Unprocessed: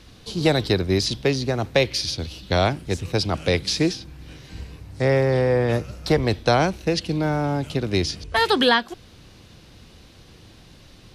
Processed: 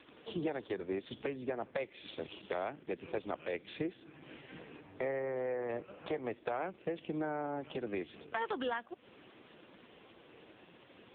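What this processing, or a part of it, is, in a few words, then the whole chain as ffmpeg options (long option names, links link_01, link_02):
voicemail: -af "highpass=300,lowpass=2900,acompressor=threshold=-34dB:ratio=8,volume=1dB" -ar 8000 -c:a libopencore_amrnb -b:a 4750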